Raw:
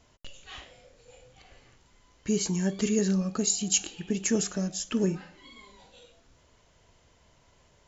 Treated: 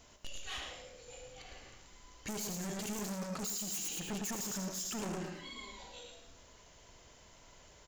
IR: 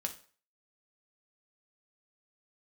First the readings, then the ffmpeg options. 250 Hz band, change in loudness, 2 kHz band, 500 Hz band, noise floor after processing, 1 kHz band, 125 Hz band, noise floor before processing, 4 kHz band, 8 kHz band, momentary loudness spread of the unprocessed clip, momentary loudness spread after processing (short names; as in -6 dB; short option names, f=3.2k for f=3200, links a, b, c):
-13.0 dB, -12.0 dB, -4.5 dB, -12.5 dB, -60 dBFS, +0.5 dB, -12.0 dB, -63 dBFS, -6.5 dB, n/a, 16 LU, 21 LU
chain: -filter_complex "[0:a]aeval=exprs='0.075*(abs(mod(val(0)/0.075+3,4)-2)-1)':c=same,aecho=1:1:109|218|327:0.447|0.116|0.0302,asoftclip=type=tanh:threshold=-36.5dB,highshelf=f=6.4k:g=8,asplit=2[a][b];[1:a]atrim=start_sample=2205,asetrate=48510,aresample=44100,adelay=75[c];[b][c]afir=irnorm=-1:irlink=0,volume=-10.5dB[d];[a][d]amix=inputs=2:normalize=0,alimiter=level_in=9.5dB:limit=-24dB:level=0:latency=1:release=30,volume=-9.5dB,equalizer=f=120:t=o:w=1.8:g=-4.5,volume=2dB"